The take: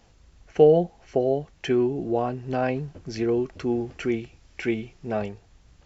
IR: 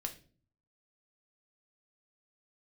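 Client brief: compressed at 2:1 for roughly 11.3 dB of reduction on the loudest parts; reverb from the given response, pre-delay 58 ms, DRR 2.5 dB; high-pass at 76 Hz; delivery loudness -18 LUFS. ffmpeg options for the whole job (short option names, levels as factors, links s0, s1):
-filter_complex "[0:a]highpass=76,acompressor=threshold=0.0251:ratio=2,asplit=2[s0][s1];[1:a]atrim=start_sample=2205,adelay=58[s2];[s1][s2]afir=irnorm=-1:irlink=0,volume=0.841[s3];[s0][s3]amix=inputs=2:normalize=0,volume=4.47"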